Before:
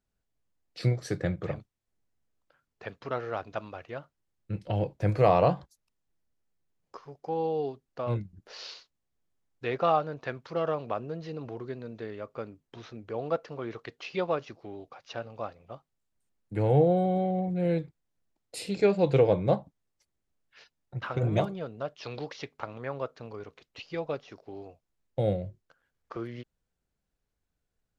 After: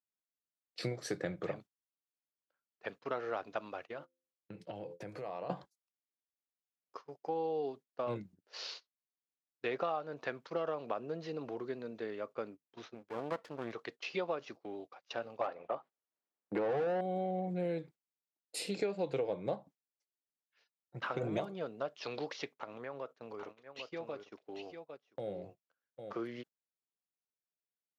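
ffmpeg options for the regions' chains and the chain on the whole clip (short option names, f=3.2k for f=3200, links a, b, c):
-filter_complex "[0:a]asettb=1/sr,asplit=3[a][b][c];[a]atrim=end=3.894[d];[b]atrim=start=3.89:end=5.5,asetpts=PTS-STARTPTS,afade=t=in:d=0.004:c=qsin,afade=t=out:st=1.606:d=0.004:c=qsin,bandreject=f=86.55:t=h:w=4,bandreject=f=173.1:t=h:w=4,bandreject=f=259.65:t=h:w=4,bandreject=f=346.2:t=h:w=4,bandreject=f=432.75:t=h:w=4,bandreject=f=519.3:t=h:w=4,acompressor=threshold=-36dB:ratio=12:attack=3.2:release=140:knee=1:detection=peak[e];[c]atrim=start=5.496[f];[d][e]acrossfade=d=0.004:c1=hsin:c2=qsin[g];[g][f]acrossfade=d=0.004:c1=qsin:c2=hsin,asettb=1/sr,asplit=3[h][i][j];[h]atrim=end=12.944[k];[i]atrim=start=12.94:end=13.73,asetpts=PTS-STARTPTS,afade=t=in:d=0.004:c=qsin,afade=t=out:st=0.786:d=0.004:c=qsin,asubboost=boost=8.5:cutoff=220,aeval=exprs='max(val(0),0)':c=same[l];[j]atrim=start=13.726[m];[k][l]acrossfade=d=0.004:c1=hsin:c2=qsin[n];[n][m]acrossfade=d=0.004:c1=qsin:c2=hsin,asettb=1/sr,asplit=3[o][p][q];[o]atrim=end=15.414[r];[p]atrim=start=15.41:end=17.01,asetpts=PTS-STARTPTS,afade=t=in:d=0.004:c=qsin,afade=t=out:st=1.596:d=0.004:c=qsin,lowpass=f=2.6k:p=1,lowshelf=f=290:g=-3.5,asplit=2[s][t];[t]highpass=f=720:p=1,volume=25dB,asoftclip=type=tanh:threshold=-13.5dB[u];[s][u]amix=inputs=2:normalize=0,lowpass=f=1k:p=1,volume=-6dB[v];[q]atrim=start=17.006[w];[r][v]acrossfade=d=0.004:c1=hsin:c2=qsin[x];[x][w]acrossfade=d=0.004:c1=qsin:c2=hsin,asettb=1/sr,asplit=3[y][z][aa];[y]atrim=end=22.504[ab];[z]atrim=start=22.5:end=26.13,asetpts=PTS-STARTPTS,afade=t=in:d=0.004:c=qsin,afade=t=out:st=3.626:d=0.004:c=qsin,equalizer=f=4.6k:w=4.7:g=-3,acompressor=threshold=-39dB:ratio=2.5:attack=3.2:release=140:knee=1:detection=peak,aecho=1:1:798:0.473,atrim=end_sample=160083[ac];[aa]atrim=start=26.126[ad];[ab][ac]acrossfade=d=0.004:c1=hsin:c2=qsin[ae];[ae][ad]acrossfade=d=0.004:c1=qsin:c2=hsin,agate=range=-18dB:threshold=-46dB:ratio=16:detection=peak,highpass=230,acompressor=threshold=-31dB:ratio=6,volume=-1dB"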